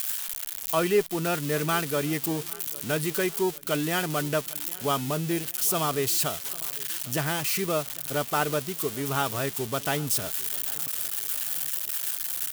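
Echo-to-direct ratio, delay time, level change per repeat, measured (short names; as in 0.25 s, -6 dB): -20.5 dB, 0.801 s, -5.5 dB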